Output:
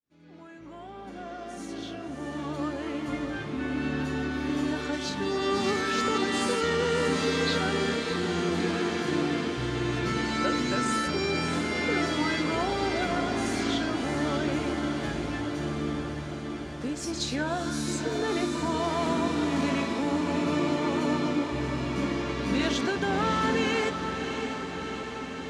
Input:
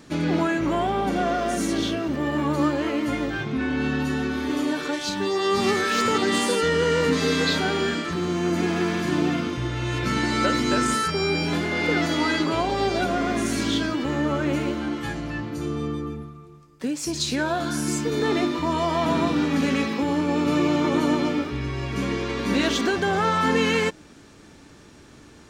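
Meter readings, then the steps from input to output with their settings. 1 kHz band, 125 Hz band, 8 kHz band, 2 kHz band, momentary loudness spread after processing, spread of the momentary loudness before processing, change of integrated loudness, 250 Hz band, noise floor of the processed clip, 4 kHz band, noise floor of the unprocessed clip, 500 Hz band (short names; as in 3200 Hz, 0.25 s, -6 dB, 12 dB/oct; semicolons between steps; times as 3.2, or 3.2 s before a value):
-5.0 dB, -5.0 dB, -5.0 dB, -4.5 dB, 9 LU, 7 LU, -4.5 dB, -5.0 dB, -40 dBFS, -4.5 dB, -48 dBFS, -4.5 dB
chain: opening faded in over 4.31 s; LPF 9600 Hz 12 dB/oct; on a send: diffused feedback echo 0.645 s, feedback 71%, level -7 dB; on the sum: gain -5.5 dB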